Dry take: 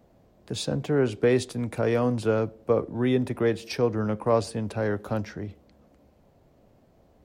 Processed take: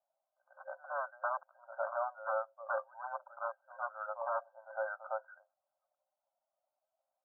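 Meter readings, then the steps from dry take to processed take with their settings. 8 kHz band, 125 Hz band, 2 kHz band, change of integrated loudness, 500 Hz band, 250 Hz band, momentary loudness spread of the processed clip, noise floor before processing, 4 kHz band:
under -35 dB, under -40 dB, -6.5 dB, -13.5 dB, -15.5 dB, under -40 dB, 7 LU, -60 dBFS, under -40 dB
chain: expander on every frequency bin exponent 1.5; tilt shelf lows -4.5 dB, about 720 Hz; pre-echo 109 ms -16.5 dB; wavefolder -24 dBFS; FFT band-pass 530–1600 Hz; trim -1 dB

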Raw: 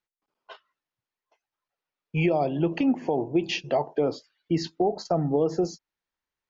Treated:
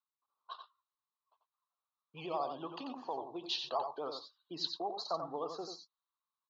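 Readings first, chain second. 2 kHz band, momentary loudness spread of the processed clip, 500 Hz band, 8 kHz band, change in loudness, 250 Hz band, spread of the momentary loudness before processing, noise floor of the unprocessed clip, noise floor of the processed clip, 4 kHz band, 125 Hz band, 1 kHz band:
-17.5 dB, 14 LU, -15.5 dB, no reading, -13.5 dB, -21.5 dB, 6 LU, under -85 dBFS, under -85 dBFS, -2.5 dB, -27.0 dB, -7.0 dB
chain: on a send: delay 90 ms -6.5 dB; on the sum: vibrato 12 Hz 74 cents; two resonant band-passes 2.1 kHz, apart 1.8 oct; level-controlled noise filter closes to 2.6 kHz, open at -41.5 dBFS; trim +5 dB

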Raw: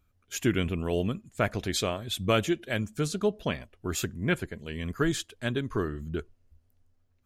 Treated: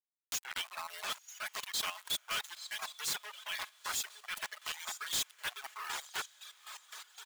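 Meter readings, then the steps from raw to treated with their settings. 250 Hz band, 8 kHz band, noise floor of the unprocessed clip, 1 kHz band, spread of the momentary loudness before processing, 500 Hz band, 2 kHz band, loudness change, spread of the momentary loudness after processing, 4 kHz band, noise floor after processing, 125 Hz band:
-33.0 dB, 0.0 dB, -69 dBFS, -5.5 dB, 9 LU, -24.5 dB, -5.0 dB, -8.0 dB, 9 LU, -1.0 dB, -67 dBFS, -34.0 dB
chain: reverse; compression 12:1, threshold -37 dBFS, peak gain reduction 18.5 dB; reverse; resonant high shelf 2.8 kHz +6 dB, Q 1.5; comb 4.7 ms, depth 67%; small samples zeroed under -38 dBFS; waveshaping leveller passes 3; high-pass 1 kHz 24 dB/octave; echo that smears into a reverb 940 ms, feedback 42%, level -13.5 dB; square tremolo 3.9 Hz, depth 60%, duty 40%; reverb removal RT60 1.8 s; saturation -36.5 dBFS, distortion -4 dB; tape noise reduction on one side only encoder only; trim +5.5 dB

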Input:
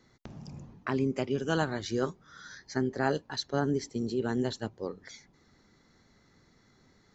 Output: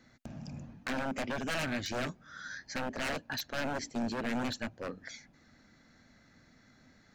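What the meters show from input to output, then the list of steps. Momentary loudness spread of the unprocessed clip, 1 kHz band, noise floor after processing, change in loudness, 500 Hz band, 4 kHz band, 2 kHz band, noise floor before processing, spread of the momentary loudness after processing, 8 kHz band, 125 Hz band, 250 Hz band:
18 LU, -2.5 dB, -63 dBFS, -5.0 dB, -7.5 dB, 0.0 dB, +1.5 dB, -65 dBFS, 12 LU, no reading, -8.0 dB, -5.0 dB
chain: wavefolder -30 dBFS; graphic EQ with 31 bands 250 Hz +6 dB, 400 Hz -9 dB, 630 Hz +6 dB, 1 kHz -4 dB, 1.6 kHz +7 dB, 2.5 kHz +6 dB

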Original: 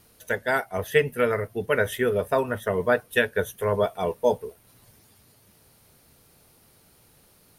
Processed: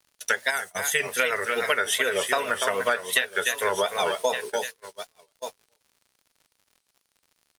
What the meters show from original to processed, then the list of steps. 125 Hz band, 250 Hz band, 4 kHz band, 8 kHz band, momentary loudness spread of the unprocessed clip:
-16.5 dB, -9.5 dB, +10.0 dB, +13.5 dB, 5 LU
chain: frequency weighting ITU-R 468; delay 292 ms -9 dB; word length cut 10-bit, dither triangular; time-frequency box 0.51–1.01 s, 230–5800 Hz -8 dB; bass shelf 89 Hz -6 dB; delay 1162 ms -15.5 dB; gate -39 dBFS, range -33 dB; crackle 84 per s -53 dBFS; vibrato 2.6 Hz 96 cents; compression 8:1, threshold -27 dBFS, peak gain reduction 14.5 dB; trim +7 dB

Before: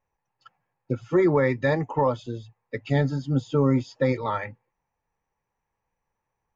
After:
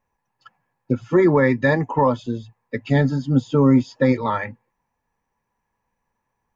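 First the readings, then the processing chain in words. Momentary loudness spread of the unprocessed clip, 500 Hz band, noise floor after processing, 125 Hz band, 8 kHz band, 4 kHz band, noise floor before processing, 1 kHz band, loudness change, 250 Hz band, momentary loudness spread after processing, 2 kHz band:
16 LU, +4.0 dB, -77 dBFS, +4.5 dB, no reading, +3.5 dB, -82 dBFS, +5.0 dB, +5.5 dB, +7.0 dB, 14 LU, +6.5 dB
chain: small resonant body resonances 230/990/1700 Hz, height 8 dB; trim +3.5 dB

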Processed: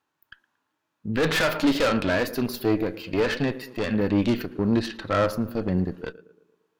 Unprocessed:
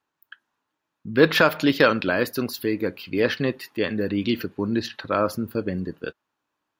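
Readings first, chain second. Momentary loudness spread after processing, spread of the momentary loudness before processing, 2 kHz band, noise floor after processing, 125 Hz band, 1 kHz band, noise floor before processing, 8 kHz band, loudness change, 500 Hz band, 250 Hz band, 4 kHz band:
8 LU, 11 LU, -4.0 dB, -79 dBFS, +2.0 dB, -2.5 dB, -81 dBFS, +1.5 dB, -1.5 dB, -2.5 dB, +0.5 dB, -2.5 dB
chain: tape echo 113 ms, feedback 59%, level -19 dB, low-pass 1.2 kHz; valve stage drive 23 dB, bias 0.7; harmonic-percussive split harmonic +9 dB

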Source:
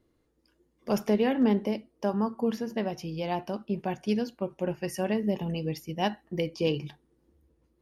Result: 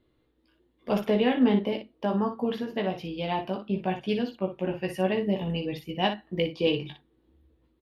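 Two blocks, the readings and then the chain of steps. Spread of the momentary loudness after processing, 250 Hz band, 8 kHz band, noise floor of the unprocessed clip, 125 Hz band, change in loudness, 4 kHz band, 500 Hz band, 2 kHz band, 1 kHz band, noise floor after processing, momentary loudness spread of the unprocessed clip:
9 LU, +1.0 dB, no reading, -72 dBFS, +1.0 dB, +1.5 dB, +5.5 dB, +2.0 dB, +4.0 dB, +2.5 dB, -70 dBFS, 8 LU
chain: resonant high shelf 4.6 kHz -8 dB, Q 3; on a send: early reflections 16 ms -4.5 dB, 59 ms -8 dB

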